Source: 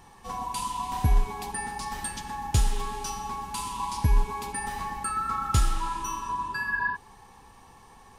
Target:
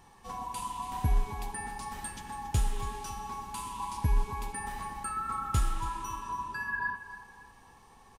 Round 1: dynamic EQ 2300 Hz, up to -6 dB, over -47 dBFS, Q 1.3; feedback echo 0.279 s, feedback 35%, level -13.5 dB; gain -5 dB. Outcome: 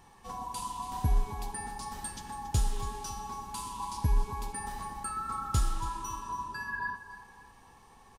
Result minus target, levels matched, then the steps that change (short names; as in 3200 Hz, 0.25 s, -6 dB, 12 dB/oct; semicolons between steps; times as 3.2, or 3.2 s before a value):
2000 Hz band -2.5 dB
change: dynamic EQ 4900 Hz, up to -6 dB, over -47 dBFS, Q 1.3